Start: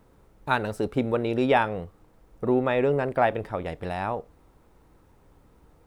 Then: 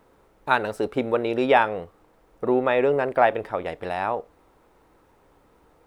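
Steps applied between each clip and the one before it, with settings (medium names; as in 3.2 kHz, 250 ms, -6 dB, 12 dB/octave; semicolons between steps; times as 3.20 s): tone controls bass -11 dB, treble -4 dB; trim +4 dB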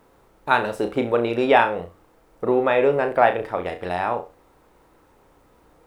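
flutter echo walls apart 5.8 m, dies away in 0.27 s; word length cut 12-bit, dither none; trim +1.5 dB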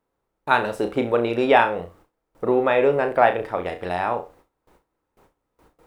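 gate with hold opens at -45 dBFS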